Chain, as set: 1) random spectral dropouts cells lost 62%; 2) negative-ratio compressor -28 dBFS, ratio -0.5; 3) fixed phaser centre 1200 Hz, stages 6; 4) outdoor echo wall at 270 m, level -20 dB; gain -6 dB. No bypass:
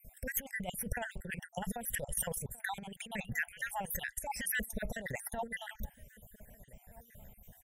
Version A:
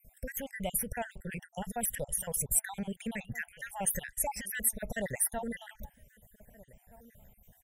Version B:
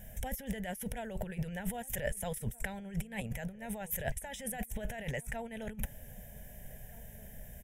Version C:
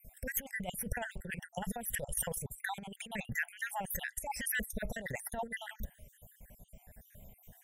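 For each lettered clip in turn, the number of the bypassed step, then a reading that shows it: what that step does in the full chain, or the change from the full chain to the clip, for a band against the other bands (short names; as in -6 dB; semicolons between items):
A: 2, momentary loudness spread change -10 LU; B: 1, 125 Hz band +8.0 dB; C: 4, echo-to-direct -25.0 dB to none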